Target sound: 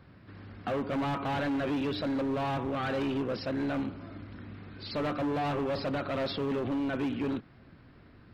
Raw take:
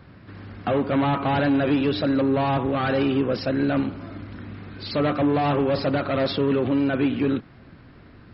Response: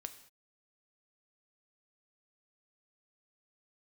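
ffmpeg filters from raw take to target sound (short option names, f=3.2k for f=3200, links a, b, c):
-af "volume=20dB,asoftclip=hard,volume=-20dB,volume=-7.5dB"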